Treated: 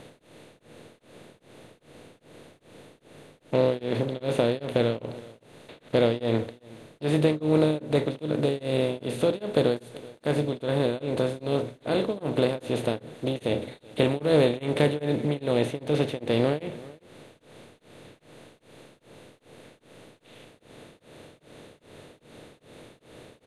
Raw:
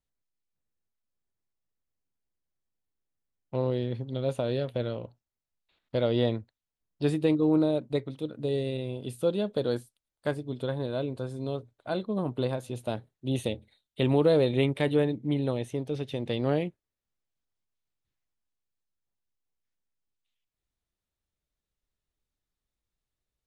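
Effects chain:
compressor on every frequency bin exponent 0.4
single-tap delay 379 ms −21.5 dB
on a send at −11.5 dB: convolution reverb RT60 0.40 s, pre-delay 8 ms
on the sum: tremolo along a rectified sine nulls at 2.5 Hz

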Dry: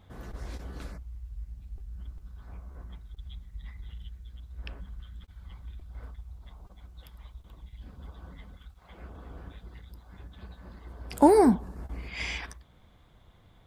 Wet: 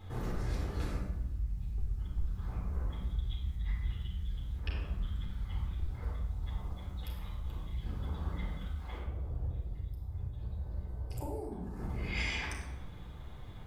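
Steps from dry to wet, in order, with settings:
downward compressor 8 to 1, threshold −39 dBFS, peak gain reduction 25 dB
0:08.98–0:11.52: drawn EQ curve 120 Hz 0 dB, 220 Hz −13 dB, 600 Hz −7 dB, 1,600 Hz −20 dB, 13,000 Hz −8 dB
convolution reverb RT60 1.0 s, pre-delay 9 ms, DRR −2.5 dB
level +1 dB

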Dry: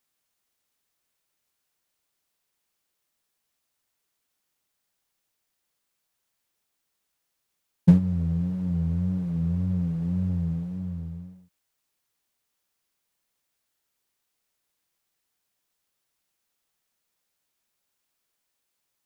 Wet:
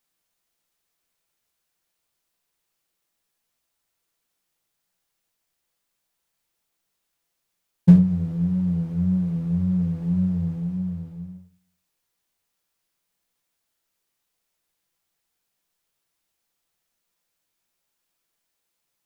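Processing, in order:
rectangular room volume 180 cubic metres, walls furnished, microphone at 0.78 metres

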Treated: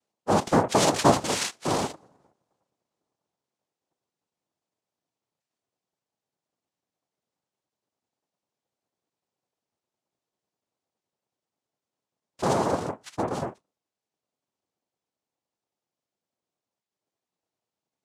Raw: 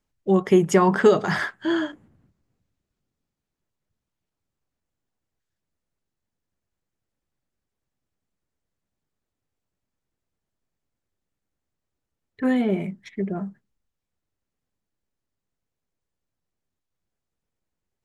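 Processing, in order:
in parallel at −2 dB: downward compressor, threshold −27 dBFS, peak gain reduction 15.5 dB
on the sum: cochlear-implant simulation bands 2
level −5.5 dB

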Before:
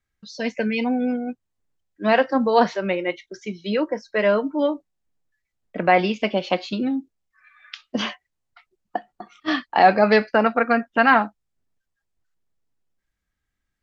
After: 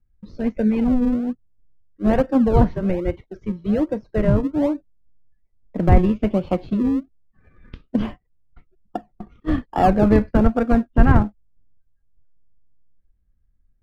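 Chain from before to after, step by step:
high-frequency loss of the air 84 metres
in parallel at −5 dB: sample-and-hold swept by an LFO 41×, swing 100% 1.2 Hz
on the sum: spectral tilt −4.5 dB per octave
level −7 dB

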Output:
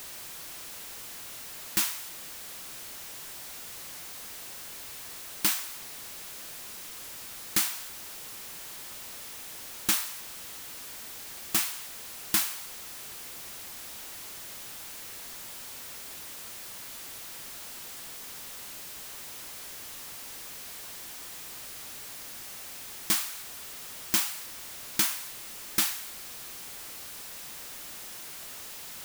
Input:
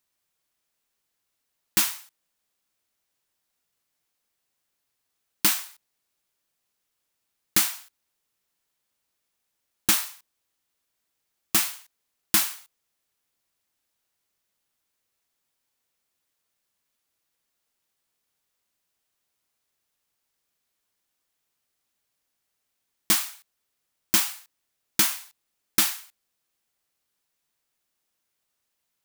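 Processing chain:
converter with a step at zero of −30.5 dBFS
level −5.5 dB

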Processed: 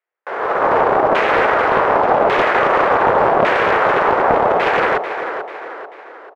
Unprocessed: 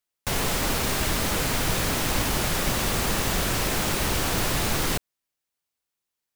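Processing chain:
brickwall limiter −20.5 dBFS, peak gain reduction 8.5 dB
Butterworth high-pass 400 Hz 36 dB per octave
tilt shelving filter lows +7 dB, about 1,200 Hz
auto-filter low-pass saw down 0.87 Hz 720–2,100 Hz
on a send: repeating echo 440 ms, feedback 45%, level −9 dB
on the sum: automatic gain control gain up to 13.5 dB
highs frequency-modulated by the lows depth 0.36 ms
level +3 dB

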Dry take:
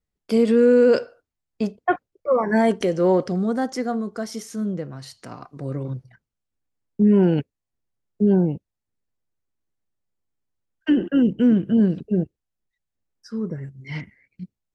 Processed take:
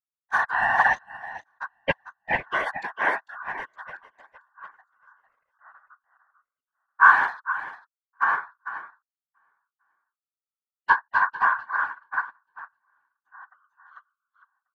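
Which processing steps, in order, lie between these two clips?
adaptive Wiener filter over 41 samples
ring modulation 1,300 Hz
0:07.03–0:08.24: high-shelf EQ 3,700 Hz +10 dB
single-tap delay 449 ms −4.5 dB
reverb reduction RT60 1.1 s
random phases in short frames
0:02.79–0:03.44: high-pass filter 180 Hz 24 dB per octave
0:13.64–0:14.43: spectral tilt +3.5 dB per octave
single-tap delay 1,139 ms −20.5 dB
expander for the loud parts 2.5 to 1, over −36 dBFS
level +6 dB

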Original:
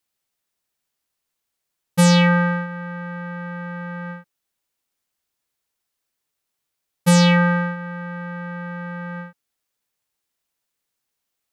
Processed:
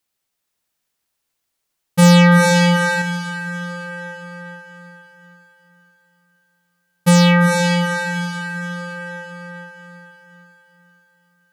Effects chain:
feedback delay with all-pass diffusion 451 ms, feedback 44%, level −4 dB
0:02.02–0:03.02: leveller curve on the samples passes 1
hard clipping −8 dBFS, distortion −33 dB
level +2.5 dB

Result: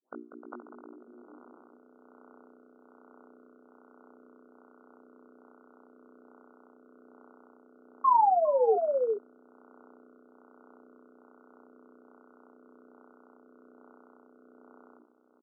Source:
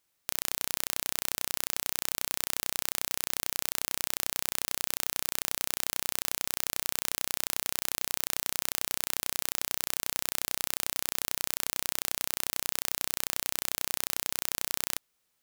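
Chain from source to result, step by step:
turntable start at the beginning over 1.34 s
mains-hum notches 60/120/180/240/300/360/420 Hz
brickwall limiter −12.5 dBFS, peak gain reduction 10.5 dB
automatic gain control gain up to 5.5 dB
hard clipping −23.5 dBFS, distortion −5 dB
linear-phase brick-wall band-pass 210–1,500 Hz
sound drawn into the spectrogram fall, 0:08.04–0:08.76, 410–1,100 Hz −29 dBFS
double-tracking delay 20 ms −5.5 dB
on a send: single-tap delay 405 ms −6.5 dB
on the sum: rotating-speaker cabinet horn 1.2 Hz
level +7.5 dB

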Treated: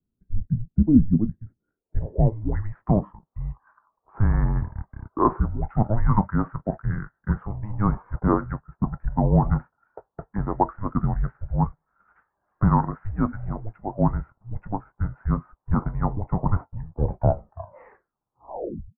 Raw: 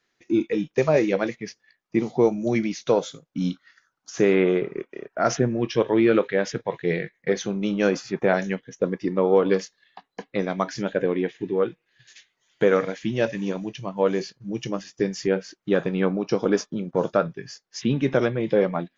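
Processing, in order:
turntable brake at the end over 2.37 s
single-sideband voice off tune −320 Hz 230–2,100 Hz
low-pass filter sweep 240 Hz → 930 Hz, 0:01.41–0:02.36

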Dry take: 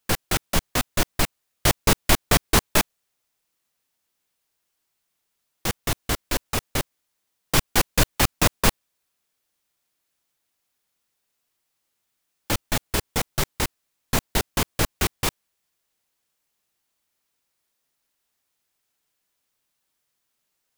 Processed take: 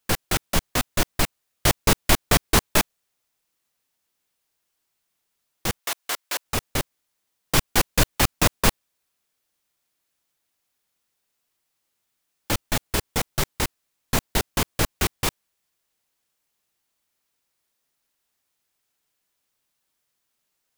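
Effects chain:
0:05.79–0:06.45: high-pass filter 690 Hz 12 dB per octave

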